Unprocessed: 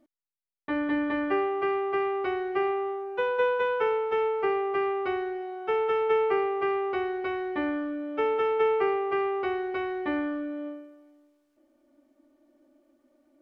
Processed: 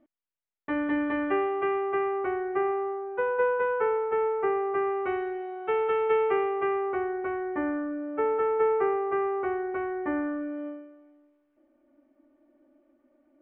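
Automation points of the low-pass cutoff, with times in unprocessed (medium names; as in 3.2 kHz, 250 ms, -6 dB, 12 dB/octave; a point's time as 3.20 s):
low-pass 24 dB/octave
1.53 s 2.9 kHz
2.32 s 2 kHz
4.85 s 2 kHz
5.27 s 3 kHz
6.40 s 3 kHz
7.01 s 1.9 kHz
10.19 s 1.9 kHz
10.68 s 2.6 kHz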